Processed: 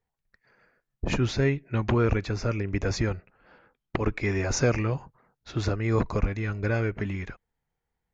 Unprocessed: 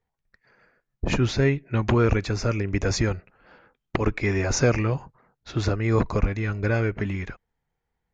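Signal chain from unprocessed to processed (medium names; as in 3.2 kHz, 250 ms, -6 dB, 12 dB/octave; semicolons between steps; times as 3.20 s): 1.83–4.13 s: distance through air 61 m; trim -3 dB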